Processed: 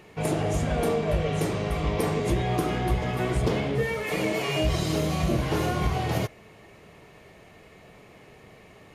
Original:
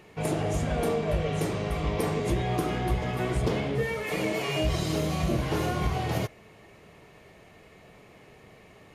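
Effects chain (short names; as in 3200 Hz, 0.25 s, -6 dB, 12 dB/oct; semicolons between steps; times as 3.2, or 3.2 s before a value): 3.1–4.96 crackle 79/s -49 dBFS; gain +2 dB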